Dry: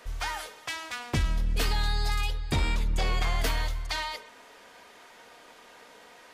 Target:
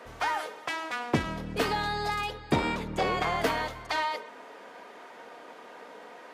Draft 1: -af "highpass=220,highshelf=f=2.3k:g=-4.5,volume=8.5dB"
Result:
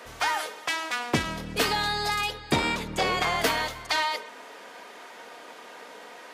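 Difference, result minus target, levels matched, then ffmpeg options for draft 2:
4000 Hz band +4.5 dB
-af "highpass=220,highshelf=f=2.3k:g=-15.5,volume=8.5dB"

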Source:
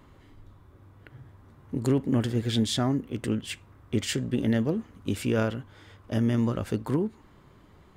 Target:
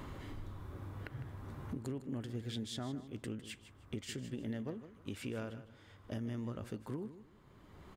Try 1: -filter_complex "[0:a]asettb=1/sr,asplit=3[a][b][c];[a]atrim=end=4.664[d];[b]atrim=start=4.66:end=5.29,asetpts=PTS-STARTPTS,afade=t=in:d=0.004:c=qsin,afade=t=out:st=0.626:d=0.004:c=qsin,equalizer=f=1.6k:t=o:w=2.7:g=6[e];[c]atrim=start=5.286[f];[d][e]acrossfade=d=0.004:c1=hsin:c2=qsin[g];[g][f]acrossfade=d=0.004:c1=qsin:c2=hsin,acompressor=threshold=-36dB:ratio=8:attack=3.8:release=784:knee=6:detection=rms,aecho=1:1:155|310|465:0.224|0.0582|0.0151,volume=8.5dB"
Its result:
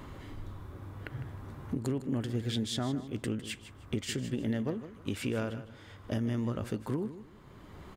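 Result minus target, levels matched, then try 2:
compressor: peak gain reduction -8.5 dB
-filter_complex "[0:a]asettb=1/sr,asplit=3[a][b][c];[a]atrim=end=4.664[d];[b]atrim=start=4.66:end=5.29,asetpts=PTS-STARTPTS,afade=t=in:d=0.004:c=qsin,afade=t=out:st=0.626:d=0.004:c=qsin,equalizer=f=1.6k:t=o:w=2.7:g=6[e];[c]atrim=start=5.286[f];[d][e]acrossfade=d=0.004:c1=hsin:c2=qsin[g];[g][f]acrossfade=d=0.004:c1=qsin:c2=hsin,acompressor=threshold=-45.5dB:ratio=8:attack=3.8:release=784:knee=6:detection=rms,aecho=1:1:155|310|465:0.224|0.0582|0.0151,volume=8.5dB"

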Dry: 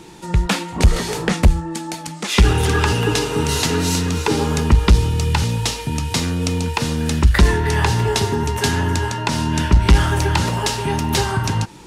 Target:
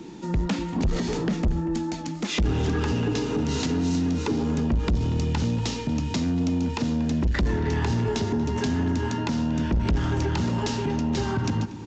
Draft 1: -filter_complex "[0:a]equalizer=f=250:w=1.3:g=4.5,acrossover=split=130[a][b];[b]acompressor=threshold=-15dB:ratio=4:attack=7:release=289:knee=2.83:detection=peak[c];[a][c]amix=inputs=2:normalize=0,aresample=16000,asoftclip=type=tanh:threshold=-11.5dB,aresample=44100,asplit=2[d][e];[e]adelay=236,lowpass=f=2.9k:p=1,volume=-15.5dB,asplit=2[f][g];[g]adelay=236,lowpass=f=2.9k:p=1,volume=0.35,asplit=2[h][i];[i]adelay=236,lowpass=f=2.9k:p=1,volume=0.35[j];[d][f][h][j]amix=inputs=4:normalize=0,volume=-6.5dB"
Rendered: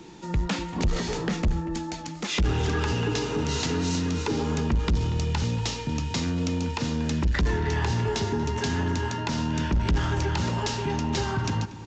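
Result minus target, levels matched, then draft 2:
250 Hz band -3.0 dB
-filter_complex "[0:a]equalizer=f=250:w=1.3:g=14.5,acrossover=split=130[a][b];[b]acompressor=threshold=-15dB:ratio=4:attack=7:release=289:knee=2.83:detection=peak[c];[a][c]amix=inputs=2:normalize=0,aresample=16000,asoftclip=type=tanh:threshold=-11.5dB,aresample=44100,asplit=2[d][e];[e]adelay=236,lowpass=f=2.9k:p=1,volume=-15.5dB,asplit=2[f][g];[g]adelay=236,lowpass=f=2.9k:p=1,volume=0.35,asplit=2[h][i];[i]adelay=236,lowpass=f=2.9k:p=1,volume=0.35[j];[d][f][h][j]amix=inputs=4:normalize=0,volume=-6.5dB"

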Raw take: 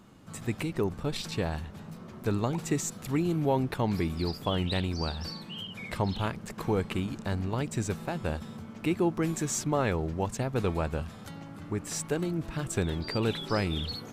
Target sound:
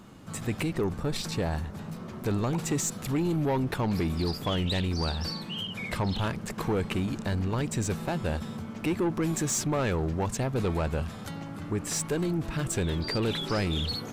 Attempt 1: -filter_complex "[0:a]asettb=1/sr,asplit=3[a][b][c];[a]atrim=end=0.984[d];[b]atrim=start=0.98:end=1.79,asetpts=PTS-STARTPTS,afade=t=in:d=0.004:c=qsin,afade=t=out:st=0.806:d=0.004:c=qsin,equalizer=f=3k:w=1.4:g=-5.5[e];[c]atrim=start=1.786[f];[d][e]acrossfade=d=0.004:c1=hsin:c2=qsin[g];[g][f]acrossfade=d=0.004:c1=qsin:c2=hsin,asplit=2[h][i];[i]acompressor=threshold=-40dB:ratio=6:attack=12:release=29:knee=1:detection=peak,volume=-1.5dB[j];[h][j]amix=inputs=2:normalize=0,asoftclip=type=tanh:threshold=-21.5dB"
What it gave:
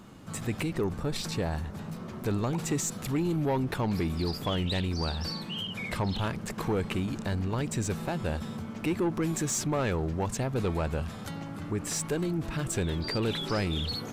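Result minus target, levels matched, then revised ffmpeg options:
compressor: peak gain reduction +7 dB
-filter_complex "[0:a]asettb=1/sr,asplit=3[a][b][c];[a]atrim=end=0.984[d];[b]atrim=start=0.98:end=1.79,asetpts=PTS-STARTPTS,afade=t=in:d=0.004:c=qsin,afade=t=out:st=0.806:d=0.004:c=qsin,equalizer=f=3k:w=1.4:g=-5.5[e];[c]atrim=start=1.786[f];[d][e]acrossfade=d=0.004:c1=hsin:c2=qsin[g];[g][f]acrossfade=d=0.004:c1=qsin:c2=hsin,asplit=2[h][i];[i]acompressor=threshold=-31.5dB:ratio=6:attack=12:release=29:knee=1:detection=peak,volume=-1.5dB[j];[h][j]amix=inputs=2:normalize=0,asoftclip=type=tanh:threshold=-21.5dB"

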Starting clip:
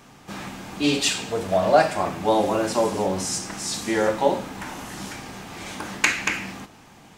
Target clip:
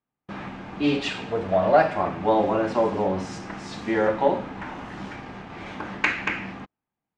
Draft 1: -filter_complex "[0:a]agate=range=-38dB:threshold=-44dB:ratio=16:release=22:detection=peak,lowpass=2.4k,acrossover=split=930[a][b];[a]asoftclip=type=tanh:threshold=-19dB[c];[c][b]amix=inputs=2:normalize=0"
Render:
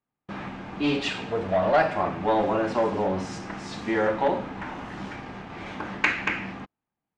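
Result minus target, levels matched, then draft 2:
soft clip: distortion +14 dB
-filter_complex "[0:a]agate=range=-38dB:threshold=-44dB:ratio=16:release=22:detection=peak,lowpass=2.4k,acrossover=split=930[a][b];[a]asoftclip=type=tanh:threshold=-8dB[c];[c][b]amix=inputs=2:normalize=0"

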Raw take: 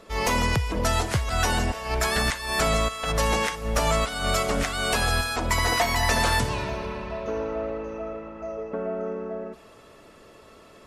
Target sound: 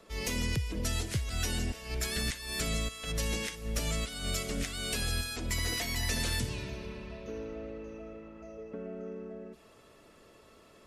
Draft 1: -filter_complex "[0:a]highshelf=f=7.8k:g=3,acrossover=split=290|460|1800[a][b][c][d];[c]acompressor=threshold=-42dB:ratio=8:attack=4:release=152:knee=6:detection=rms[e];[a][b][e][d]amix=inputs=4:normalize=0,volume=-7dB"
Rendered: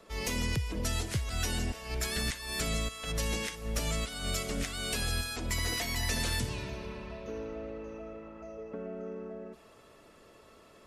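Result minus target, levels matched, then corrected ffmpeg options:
compressor: peak gain reduction -8.5 dB
-filter_complex "[0:a]highshelf=f=7.8k:g=3,acrossover=split=290|460|1800[a][b][c][d];[c]acompressor=threshold=-51.5dB:ratio=8:attack=4:release=152:knee=6:detection=rms[e];[a][b][e][d]amix=inputs=4:normalize=0,volume=-7dB"

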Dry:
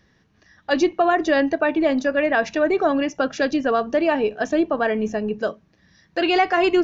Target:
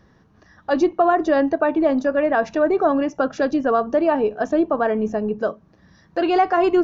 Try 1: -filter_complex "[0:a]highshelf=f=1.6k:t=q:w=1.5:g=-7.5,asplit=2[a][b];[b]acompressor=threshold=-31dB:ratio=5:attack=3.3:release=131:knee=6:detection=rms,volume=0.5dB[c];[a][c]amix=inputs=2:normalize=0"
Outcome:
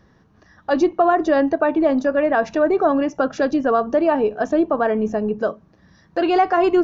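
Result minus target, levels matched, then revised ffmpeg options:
compressor: peak gain reduction -7 dB
-filter_complex "[0:a]highshelf=f=1.6k:t=q:w=1.5:g=-7.5,asplit=2[a][b];[b]acompressor=threshold=-40dB:ratio=5:attack=3.3:release=131:knee=6:detection=rms,volume=0.5dB[c];[a][c]amix=inputs=2:normalize=0"

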